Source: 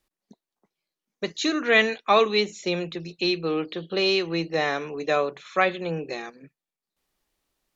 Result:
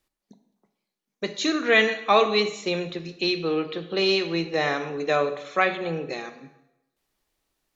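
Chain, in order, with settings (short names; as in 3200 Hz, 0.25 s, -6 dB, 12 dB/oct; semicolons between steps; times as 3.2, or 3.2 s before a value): plate-style reverb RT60 0.91 s, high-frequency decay 0.85×, DRR 8.5 dB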